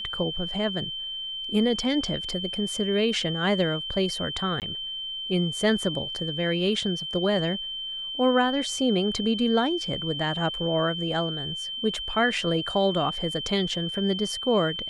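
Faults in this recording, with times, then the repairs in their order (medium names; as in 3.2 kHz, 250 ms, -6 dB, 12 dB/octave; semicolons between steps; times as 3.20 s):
whine 3.1 kHz -31 dBFS
4.60–4.62 s: dropout 18 ms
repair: band-stop 3.1 kHz, Q 30; interpolate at 4.60 s, 18 ms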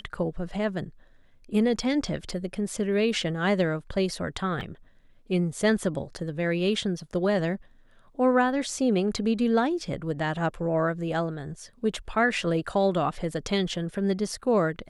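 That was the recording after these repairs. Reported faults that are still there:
nothing left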